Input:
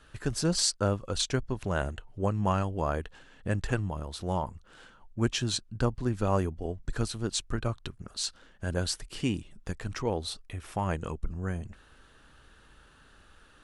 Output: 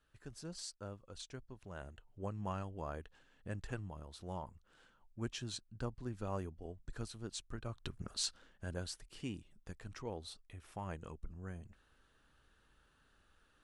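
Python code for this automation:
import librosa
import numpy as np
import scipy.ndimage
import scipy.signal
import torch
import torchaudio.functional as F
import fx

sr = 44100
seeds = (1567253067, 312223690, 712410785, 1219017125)

y = fx.gain(x, sr, db=fx.line((1.64, -20.0), (2.23, -13.5), (7.67, -13.5), (7.97, -1.0), (8.89, -13.5)))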